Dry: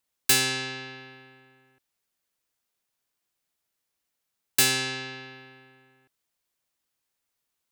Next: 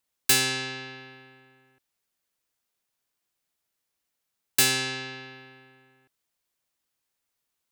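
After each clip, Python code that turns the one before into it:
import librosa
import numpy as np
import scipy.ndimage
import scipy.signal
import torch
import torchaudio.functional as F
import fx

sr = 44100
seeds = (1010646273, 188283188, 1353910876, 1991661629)

y = x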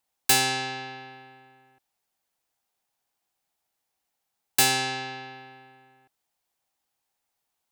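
y = fx.peak_eq(x, sr, hz=790.0, db=11.0, octaves=0.45)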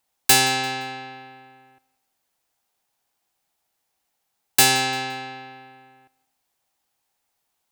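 y = fx.echo_feedback(x, sr, ms=172, feedback_pct=38, wet_db=-22.5)
y = y * 10.0 ** (5.0 / 20.0)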